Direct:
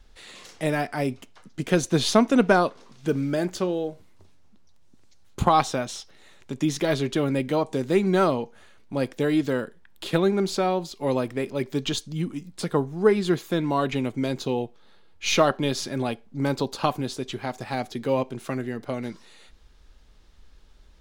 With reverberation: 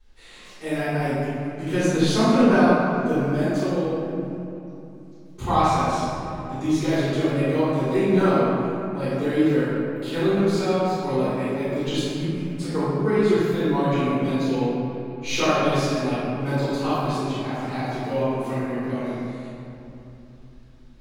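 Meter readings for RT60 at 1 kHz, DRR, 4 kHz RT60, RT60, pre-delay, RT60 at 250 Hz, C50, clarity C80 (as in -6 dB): 2.9 s, -15.5 dB, 1.6 s, 3.0 s, 3 ms, 4.1 s, -5.0 dB, -2.5 dB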